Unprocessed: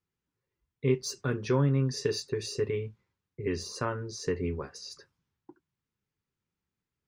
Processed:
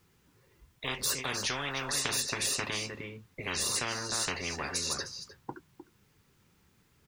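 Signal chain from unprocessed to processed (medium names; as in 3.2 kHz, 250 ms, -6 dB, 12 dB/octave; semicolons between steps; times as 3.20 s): delay 306 ms -20 dB; spectrum-flattening compressor 10:1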